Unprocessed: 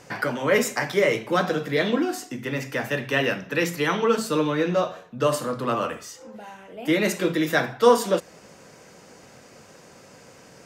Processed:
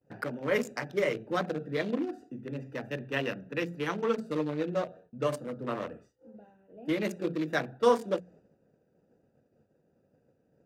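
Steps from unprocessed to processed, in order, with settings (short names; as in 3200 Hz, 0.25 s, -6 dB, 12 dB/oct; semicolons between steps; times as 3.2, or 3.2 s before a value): Wiener smoothing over 41 samples; expander -45 dBFS; notches 60/120/180 Hz; gain -7 dB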